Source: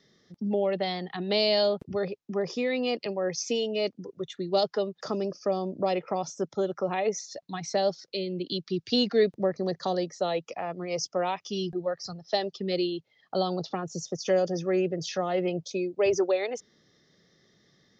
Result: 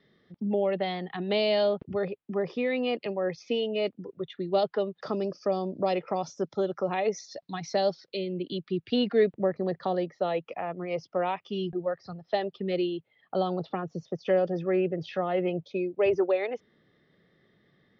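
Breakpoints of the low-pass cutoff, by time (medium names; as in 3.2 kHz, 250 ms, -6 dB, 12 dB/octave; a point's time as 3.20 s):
low-pass 24 dB/octave
4.82 s 3.4 kHz
5.39 s 5.2 kHz
7.87 s 5.2 kHz
8.34 s 3.1 kHz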